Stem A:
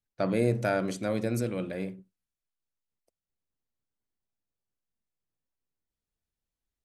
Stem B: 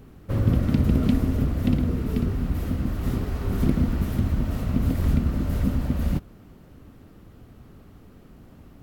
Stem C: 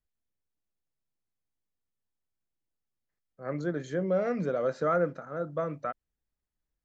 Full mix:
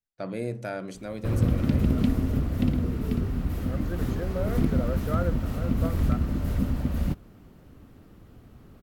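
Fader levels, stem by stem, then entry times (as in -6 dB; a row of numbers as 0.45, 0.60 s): -6.0, -2.5, -5.0 dB; 0.00, 0.95, 0.25 s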